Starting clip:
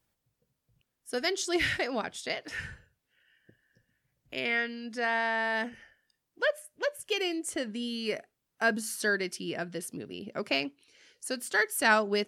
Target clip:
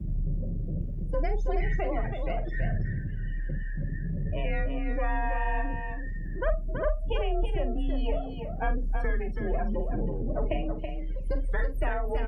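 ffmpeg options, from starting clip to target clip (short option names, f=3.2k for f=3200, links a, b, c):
-filter_complex "[0:a]aeval=exprs='val(0)+0.5*0.0355*sgn(val(0))':c=same,acrossover=split=230[a][b];[a]acrusher=bits=6:mix=0:aa=0.000001[c];[c][b]amix=inputs=2:normalize=0,acompressor=threshold=-26dB:ratio=16,aeval=exprs='max(val(0),0)':c=same,bass=f=250:g=13,treble=f=4k:g=-4,afftdn=nr=34:nf=-31,asplit=2[d][e];[e]adelay=47,volume=-10.5dB[f];[d][f]amix=inputs=2:normalize=0,afreqshift=35,equalizer=f=250:t=o:w=0.67:g=-7,equalizer=f=630:t=o:w=0.67:g=9,equalizer=f=4k:t=o:w=0.67:g=-5,equalizer=f=10k:t=o:w=0.67:g=-9,asplit=2[g][h];[h]aecho=0:1:327:0.473[i];[g][i]amix=inputs=2:normalize=0"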